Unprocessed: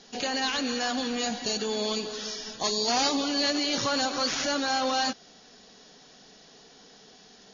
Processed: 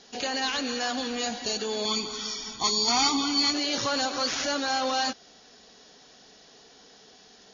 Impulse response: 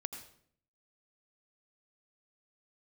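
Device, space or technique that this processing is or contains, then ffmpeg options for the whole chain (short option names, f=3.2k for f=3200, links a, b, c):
low shelf boost with a cut just above: -filter_complex "[0:a]highpass=f=66:p=1,asettb=1/sr,asplit=3[a][b][c];[a]atrim=end=1.854[d];[b]atrim=start=1.85:end=3.54,asetpts=PTS-STARTPTS,afade=t=in:d=0.004:c=qsin,afade=t=out:st=1.686:d=0.004:c=qsin,aecho=1:1:0.9:0.84,atrim=end_sample=74529[e];[c]atrim=start=3.536[f];[d][e]acrossfade=d=0.004:c1=hsin:c2=qsin[g];[g][f]acrossfade=d=0.004:c1=qsin:c2=hsin,lowshelf=f=92:g=6.5,equalizer=f=170:t=o:w=1.1:g=-5.5"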